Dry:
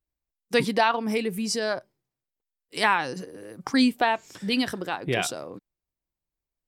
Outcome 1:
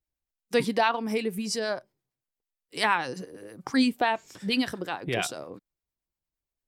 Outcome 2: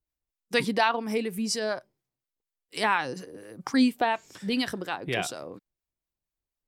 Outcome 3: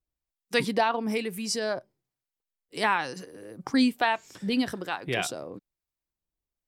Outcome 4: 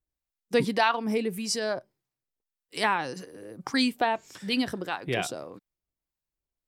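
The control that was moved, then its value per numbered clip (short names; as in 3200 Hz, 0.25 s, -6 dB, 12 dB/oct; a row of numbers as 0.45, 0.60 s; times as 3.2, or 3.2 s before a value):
harmonic tremolo, rate: 8.7, 4.2, 1.1, 1.7 Hz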